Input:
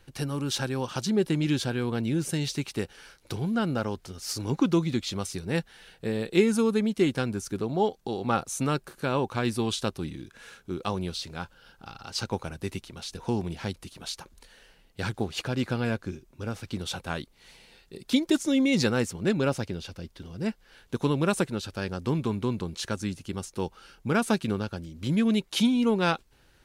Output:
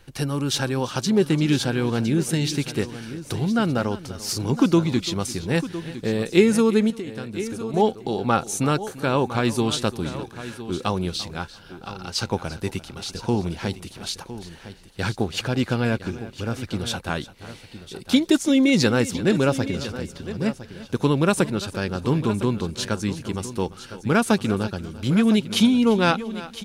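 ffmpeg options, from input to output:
-filter_complex "[0:a]asplit=2[a][b];[b]aecho=0:1:343|686:0.141|0.0311[c];[a][c]amix=inputs=2:normalize=0,asettb=1/sr,asplit=3[d][e][f];[d]atrim=end=6.904[g];[e]atrim=start=6.9:end=7.74,asetpts=PTS-STARTPTS,afade=t=in:d=0.004:c=qsin,afade=t=out:st=0.836:d=0.004:c=qsin,acompressor=threshold=-35dB:ratio=12[h];[f]atrim=start=7.736[i];[g][h]acrossfade=d=0.004:c1=hsin:c2=qsin[j];[j][i]acrossfade=d=0.004:c1=qsin:c2=hsin,asplit=2[k][l];[l]aecho=0:1:1009:0.211[m];[k][m]amix=inputs=2:normalize=0,volume=5.5dB"

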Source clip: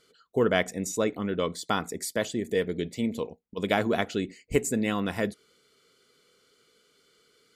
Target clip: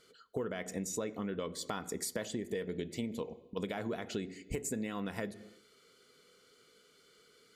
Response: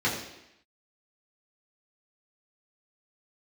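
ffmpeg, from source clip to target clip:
-filter_complex "[0:a]alimiter=limit=-17dB:level=0:latency=1:release=107,asplit=2[a][b];[1:a]atrim=start_sample=2205,afade=t=out:st=0.4:d=0.01,atrim=end_sample=18081[c];[b][c]afir=irnorm=-1:irlink=0,volume=-26dB[d];[a][d]amix=inputs=2:normalize=0,acompressor=threshold=-34dB:ratio=6"

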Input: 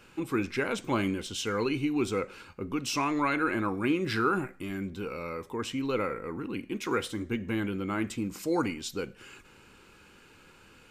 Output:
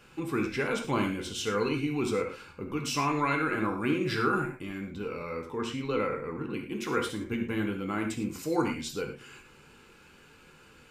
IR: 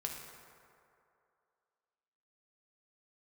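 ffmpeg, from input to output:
-filter_complex "[0:a]asettb=1/sr,asplit=3[a][b][c];[a]atrim=end=4.524[d];[b]atrim=start=4.52:end=6.54,asetpts=PTS-STARTPTS,afade=t=in:d=0.004:c=qsin,afade=t=out:st=2.016:d=0.004:c=qsin,highshelf=f=9k:g=-10.5[e];[c]atrim=start=6.536[f];[d][e]acrossfade=d=0.004:c1=hsin:c2=qsin[g];[g][f]acrossfade=d=0.004:c1=qsin:c2=hsin[h];[1:a]atrim=start_sample=2205,afade=t=out:st=0.17:d=0.01,atrim=end_sample=7938[i];[h][i]afir=irnorm=-1:irlink=0,volume=1dB"

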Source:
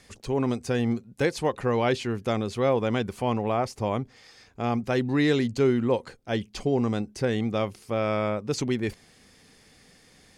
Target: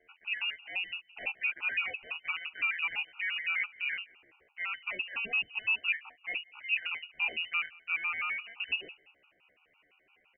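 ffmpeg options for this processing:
-filter_complex "[0:a]highpass=390,highshelf=f=2.4k:g=-11.5,alimiter=limit=-20dB:level=0:latency=1:release=36,acontrast=28,flanger=delay=18.5:depth=5.2:speed=0.4,asetrate=68011,aresample=44100,atempo=0.64842,asplit=2[a][b];[b]adelay=181,lowpass=f=1.8k:p=1,volume=-23dB,asplit=2[c][d];[d]adelay=181,lowpass=f=1.8k:p=1,volume=0.36[e];[a][c][e]amix=inputs=3:normalize=0,lowpass=f=2.7k:t=q:w=0.5098,lowpass=f=2.7k:t=q:w=0.6013,lowpass=f=2.7k:t=q:w=0.9,lowpass=f=2.7k:t=q:w=2.563,afreqshift=-3200,afftfilt=real='re*gt(sin(2*PI*5.9*pts/sr)*(1-2*mod(floor(b*sr/1024/750),2)),0)':imag='im*gt(sin(2*PI*5.9*pts/sr)*(1-2*mod(floor(b*sr/1024/750),2)),0)':win_size=1024:overlap=0.75,volume=-2dB"

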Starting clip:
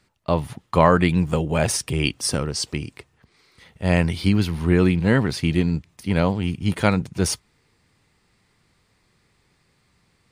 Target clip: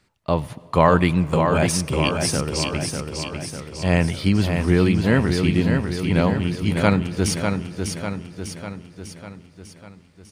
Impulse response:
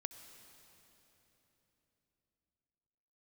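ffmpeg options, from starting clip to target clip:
-filter_complex "[0:a]aecho=1:1:598|1196|1794|2392|2990|3588|4186:0.531|0.292|0.161|0.0883|0.0486|0.0267|0.0147,asplit=2[a][b];[1:a]atrim=start_sample=2205,highshelf=f=11k:g=-10[c];[b][c]afir=irnorm=-1:irlink=0,volume=-6dB[d];[a][d]amix=inputs=2:normalize=0,volume=-2.5dB"

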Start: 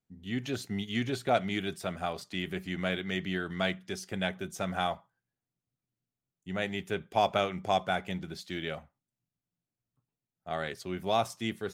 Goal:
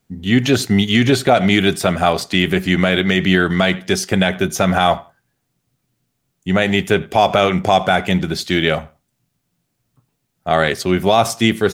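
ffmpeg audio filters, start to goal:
-filter_complex "[0:a]asettb=1/sr,asplit=3[a][b][c];[a]atrim=end=4.414[d];[b]atrim=start=4.41:end=4.82,asetpts=PTS-STARTPTS,afade=t=in:d=0.004:c=qsin,afade=t=out:st=0.406:d=0.004:c=qsin,bandreject=f=8k:w=6.3[e];[c]atrim=start=4.816[f];[d][e]acrossfade=d=0.004:c1=hsin:c2=qsin[g];[g][f]acrossfade=d=0.004:c1=qsin:c2=hsin,asplit=2[h][i];[i]adelay=89,lowpass=f=3.4k:p=1,volume=-24dB,asplit=2[j][k];[k]adelay=89,lowpass=f=3.4k:p=1,volume=0.21[l];[j][l]amix=inputs=2:normalize=0[m];[h][m]amix=inputs=2:normalize=0,alimiter=level_in=21dB:limit=-1dB:release=50:level=0:latency=1,volume=-1dB"

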